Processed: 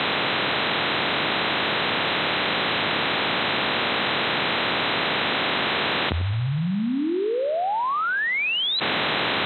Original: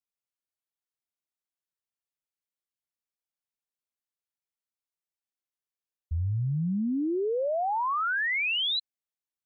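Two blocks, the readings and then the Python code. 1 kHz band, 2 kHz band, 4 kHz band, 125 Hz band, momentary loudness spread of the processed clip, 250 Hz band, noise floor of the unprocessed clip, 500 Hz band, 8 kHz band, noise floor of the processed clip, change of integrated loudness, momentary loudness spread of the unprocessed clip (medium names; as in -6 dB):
+10.0 dB, +11.5 dB, +12.5 dB, +4.5 dB, 3 LU, +6.5 dB, under -85 dBFS, +8.5 dB, no reading, -24 dBFS, +5.5 dB, 6 LU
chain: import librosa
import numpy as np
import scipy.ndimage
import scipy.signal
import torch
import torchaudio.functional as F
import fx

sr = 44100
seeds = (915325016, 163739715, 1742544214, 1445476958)

p1 = fx.bin_compress(x, sr, power=0.4)
p2 = scipy.signal.sosfilt(scipy.signal.butter(2, 140.0, 'highpass', fs=sr, output='sos'), p1)
p3 = p2 + fx.echo_wet_lowpass(p2, sr, ms=93, feedback_pct=44, hz=570.0, wet_db=-10, dry=0)
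p4 = fx.env_flatten(p3, sr, amount_pct=100)
y = p4 * 10.0 ** (1.5 / 20.0)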